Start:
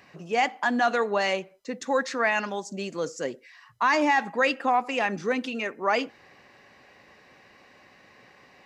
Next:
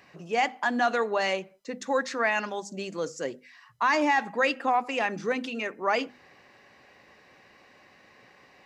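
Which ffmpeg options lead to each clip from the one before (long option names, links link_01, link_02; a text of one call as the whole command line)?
ffmpeg -i in.wav -af "bandreject=frequency=50:width_type=h:width=6,bandreject=frequency=100:width_type=h:width=6,bandreject=frequency=150:width_type=h:width=6,bandreject=frequency=200:width_type=h:width=6,bandreject=frequency=250:width_type=h:width=6,volume=-1.5dB" out.wav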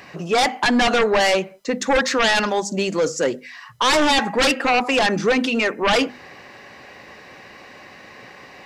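ffmpeg -i in.wav -af "aeval=exprs='0.224*sin(PI/2*3.16*val(0)/0.224)':channel_layout=same" out.wav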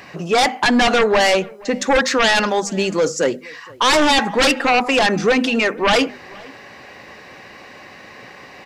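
ffmpeg -i in.wav -filter_complex "[0:a]asplit=2[link_01][link_02];[link_02]adelay=472.3,volume=-24dB,highshelf=frequency=4000:gain=-10.6[link_03];[link_01][link_03]amix=inputs=2:normalize=0,volume=2.5dB" out.wav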